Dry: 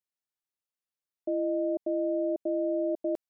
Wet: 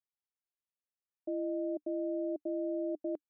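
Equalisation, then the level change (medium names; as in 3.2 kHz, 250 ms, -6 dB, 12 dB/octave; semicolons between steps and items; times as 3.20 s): distance through air 470 m; dynamic bell 300 Hz, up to +6 dB, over -49 dBFS, Q 5.1; -6.5 dB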